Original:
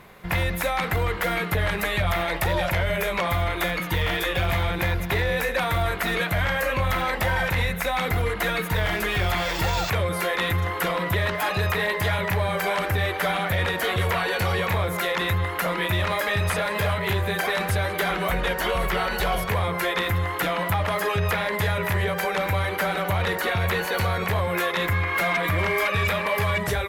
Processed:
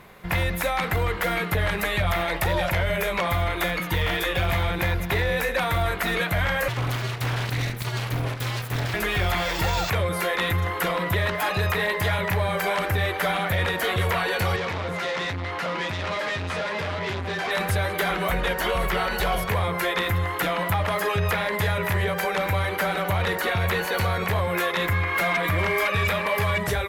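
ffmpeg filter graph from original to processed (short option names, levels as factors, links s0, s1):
-filter_complex "[0:a]asettb=1/sr,asplit=3[s0][s1][s2];[s0]atrim=end=6.684[s3];[s1]atrim=start=6.68:end=8.94,asetpts=PTS-STARTPTS,afade=t=in:d=0.004:c=qsin,afade=t=out:st=2.256:d=0.004:c=qsin,aeval=exprs='abs(val(0))':c=same,aeval=exprs='val(0)*sin(2*PI*120*n/s)':c=same[s4];[s2]atrim=start=8.936[s5];[s3][s4]acrossfade=d=0.004:c1=hsin:c2=qsin[s6];[s6][s5]acrossfade=d=0.004:c1=qsin:c2=hsin,asettb=1/sr,asplit=3[s7][s8][s9];[s7]atrim=end=14.564[s10];[s8]atrim=start=14.56:end=17.51,asetpts=PTS-STARTPTS,afade=t=in:d=0.004:c=qsin,afade=t=out:st=2.946:d=0.004:c=qsin,asplit=2[s11][s12];[s12]adelay=13,volume=0.501[s13];[s11][s13]amix=inputs=2:normalize=0,atrim=end_sample=130095,volume=17.8,asoftclip=hard,volume=0.0562,highpass=100,lowpass=5300[s14];[s9]atrim=start=17.506[s15];[s10][s14]acrossfade=d=0.004:c1=hsin:c2=qsin[s16];[s16][s15]acrossfade=d=0.004:c1=qsin:c2=hsin"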